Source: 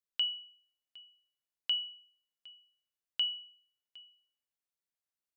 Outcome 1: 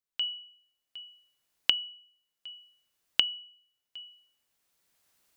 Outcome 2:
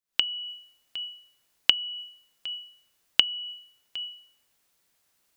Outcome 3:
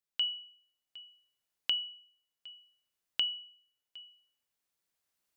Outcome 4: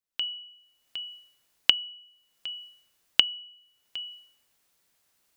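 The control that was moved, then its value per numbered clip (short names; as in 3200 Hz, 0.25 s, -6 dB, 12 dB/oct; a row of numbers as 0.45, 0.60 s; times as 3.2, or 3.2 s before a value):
recorder AGC, rising by: 12, 89, 5.1, 35 dB/s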